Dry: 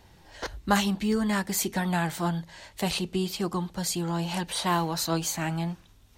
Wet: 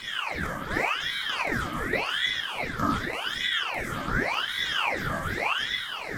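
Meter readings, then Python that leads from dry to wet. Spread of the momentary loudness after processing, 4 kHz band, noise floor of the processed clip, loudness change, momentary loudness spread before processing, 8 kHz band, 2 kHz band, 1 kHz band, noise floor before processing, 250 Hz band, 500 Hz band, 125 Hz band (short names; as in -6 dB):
4 LU, +6.0 dB, -35 dBFS, +1.0 dB, 9 LU, -11.5 dB, +8.5 dB, +0.5 dB, -56 dBFS, -7.5 dB, -2.0 dB, -6.0 dB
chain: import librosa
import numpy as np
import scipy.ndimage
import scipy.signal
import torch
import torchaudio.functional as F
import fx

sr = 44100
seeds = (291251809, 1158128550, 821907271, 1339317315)

y = fx.bin_compress(x, sr, power=0.2)
y = fx.vowel_filter(y, sr, vowel='a')
y = fx.peak_eq(y, sr, hz=14000.0, db=13.0, octaves=0.83)
y = fx.phaser_stages(y, sr, stages=6, low_hz=190.0, high_hz=3100.0, hz=1.5, feedback_pct=35)
y = fx.room_shoebox(y, sr, seeds[0], volume_m3=320.0, walls='mixed', distance_m=1.1)
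y = fx.ring_lfo(y, sr, carrier_hz=1600.0, swing_pct=70, hz=0.87)
y = F.gain(torch.from_numpy(y), 5.0).numpy()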